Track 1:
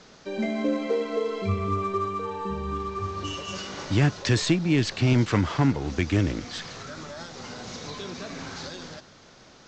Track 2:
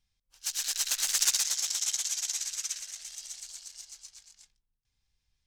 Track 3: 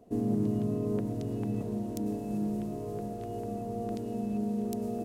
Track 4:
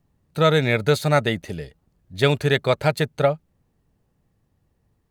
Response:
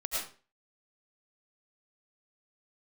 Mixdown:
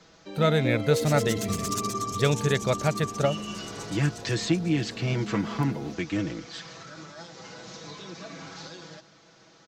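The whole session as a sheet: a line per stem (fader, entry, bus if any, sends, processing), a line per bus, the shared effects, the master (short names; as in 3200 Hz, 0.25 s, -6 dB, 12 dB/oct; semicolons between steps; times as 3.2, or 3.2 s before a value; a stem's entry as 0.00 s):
-6.0 dB, 0.00 s, no send, HPF 220 Hz 6 dB/oct; comb 6.1 ms, depth 71%
-0.5 dB, 0.50 s, no send, reverb removal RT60 0.75 s; auto duck -7 dB, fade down 1.70 s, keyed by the fourth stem
-8.0 dB, 0.90 s, no send, dry
-7.0 dB, 0.00 s, no send, dry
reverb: off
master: low shelf 250 Hz +5 dB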